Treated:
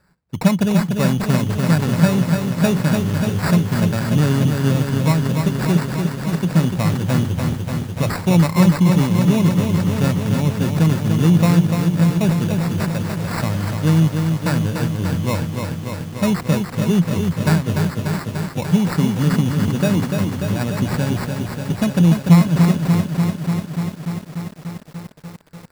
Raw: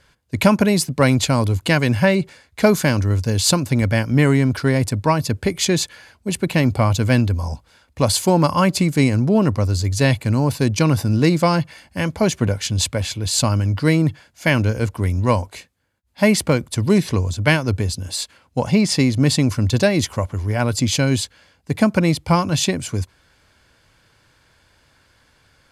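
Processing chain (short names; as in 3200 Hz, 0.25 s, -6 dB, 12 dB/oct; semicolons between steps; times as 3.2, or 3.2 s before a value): sample-and-hold 14×; bell 170 Hz +13.5 dB 0.42 oct; lo-fi delay 0.294 s, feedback 80%, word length 6-bit, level -5 dB; gain -6.5 dB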